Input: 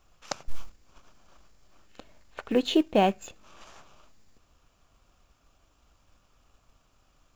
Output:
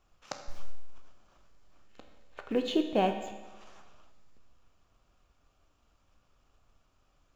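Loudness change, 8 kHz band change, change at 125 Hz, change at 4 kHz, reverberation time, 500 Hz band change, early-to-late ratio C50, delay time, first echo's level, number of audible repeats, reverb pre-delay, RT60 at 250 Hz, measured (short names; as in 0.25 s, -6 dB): -5.0 dB, n/a, -5.0 dB, -6.0 dB, 1.2 s, -4.5 dB, 8.0 dB, none, none, none, 14 ms, 1.2 s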